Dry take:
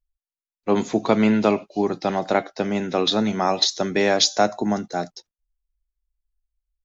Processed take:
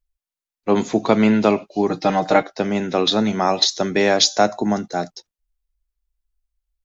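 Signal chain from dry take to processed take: 1.89–2.43 s: comb 6.5 ms, depth 81%; trim +2.5 dB

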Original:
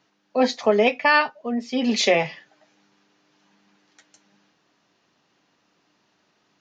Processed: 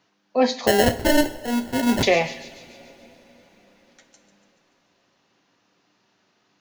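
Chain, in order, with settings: feedback echo behind a high-pass 144 ms, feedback 58%, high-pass 3.3 kHz, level -12 dB; 0.67–2.03 s: sample-rate reducer 1.2 kHz, jitter 0%; two-slope reverb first 0.46 s, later 4.8 s, from -20 dB, DRR 9.5 dB

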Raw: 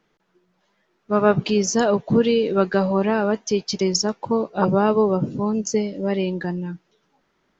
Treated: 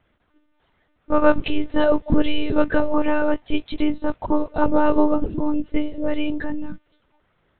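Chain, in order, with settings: monotone LPC vocoder at 8 kHz 300 Hz; trim +2.5 dB

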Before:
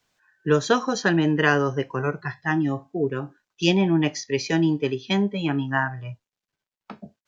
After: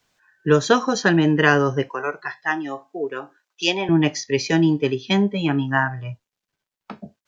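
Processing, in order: 1.89–3.89 s: high-pass 500 Hz 12 dB/octave; trim +3.5 dB

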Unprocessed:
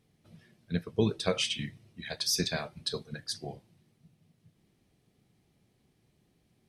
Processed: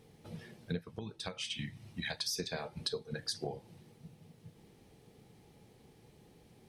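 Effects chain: small resonant body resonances 470/840 Hz, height 9 dB, ringing for 30 ms; compression 12:1, threshold -42 dBFS, peak gain reduction 25 dB; 0.80–2.35 s: peaking EQ 450 Hz -12.5 dB 0.65 oct; trim +8 dB

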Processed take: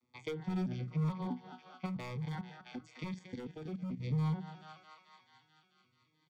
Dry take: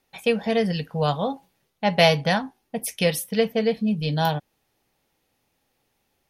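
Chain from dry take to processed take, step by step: vocoder on a broken chord major triad, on B2, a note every 216 ms; dynamic bell 1.6 kHz, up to +8 dB, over -50 dBFS, Q 1.8; thinning echo 218 ms, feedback 76%, high-pass 790 Hz, level -14 dB; hard clipper -22 dBFS, distortion -8 dB; compression 2.5:1, threshold -40 dBFS, peak gain reduction 11 dB; peaking EQ 400 Hz +3 dB 0.66 oct; hum notches 60/120/180 Hz; 1.86–4.00 s: level held to a coarse grid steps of 10 dB; comb 0.9 ms, depth 57%; Shepard-style phaser falling 1 Hz

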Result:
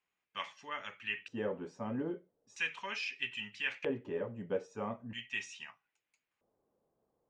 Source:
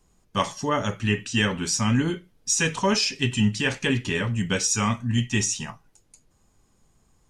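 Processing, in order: LFO band-pass square 0.39 Hz 530–2400 Hz; treble shelf 3.3 kHz -11 dB; trim -2.5 dB

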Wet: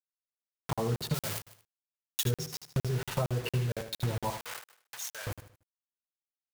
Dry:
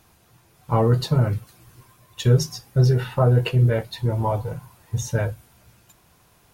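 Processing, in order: 2.78–3.60 s: jump at every zero crossing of -31.5 dBFS; bit crusher 5-bit; 1.14–2.24 s: tilt EQ +3.5 dB/octave; compression, threshold -26 dBFS, peak gain reduction 13.5 dB; 4.30–5.27 s: high-pass 1.2 kHz 12 dB/octave; feedback delay 76 ms, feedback 36%, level -9.5 dB; crackling interface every 0.23 s, samples 2048, zero, from 0.73 s; trim -2 dB

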